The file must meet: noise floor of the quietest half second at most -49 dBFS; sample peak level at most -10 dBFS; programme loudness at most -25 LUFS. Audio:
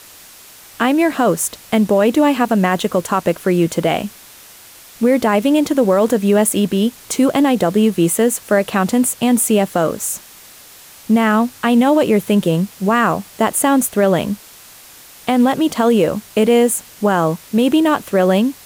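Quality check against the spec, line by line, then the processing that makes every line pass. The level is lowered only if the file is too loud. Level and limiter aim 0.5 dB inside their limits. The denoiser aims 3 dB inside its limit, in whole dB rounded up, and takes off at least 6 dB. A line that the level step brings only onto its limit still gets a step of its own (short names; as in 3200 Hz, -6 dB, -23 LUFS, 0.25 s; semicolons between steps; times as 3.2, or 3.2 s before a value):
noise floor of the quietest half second -41 dBFS: fail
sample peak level -4.5 dBFS: fail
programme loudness -15.5 LUFS: fail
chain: gain -10 dB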